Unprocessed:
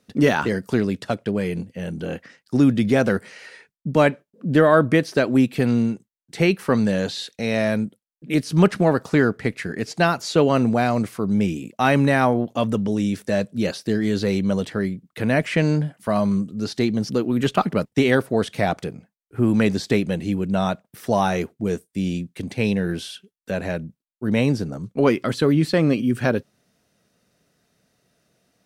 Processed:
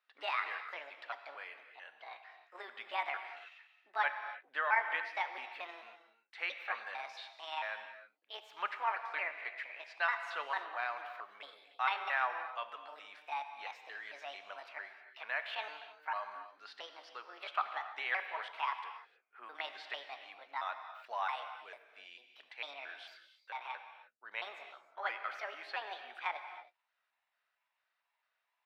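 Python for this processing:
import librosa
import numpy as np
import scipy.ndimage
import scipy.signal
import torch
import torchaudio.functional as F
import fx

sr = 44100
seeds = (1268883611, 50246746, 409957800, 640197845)

y = fx.pitch_trill(x, sr, semitones=6.0, every_ms=224)
y = scipy.signal.sosfilt(scipy.signal.butter(4, 1000.0, 'highpass', fs=sr, output='sos'), y)
y = fx.air_absorb(y, sr, metres=400.0)
y = fx.rev_gated(y, sr, seeds[0], gate_ms=340, shape='flat', drr_db=7.5)
y = y * librosa.db_to_amplitude(-6.5)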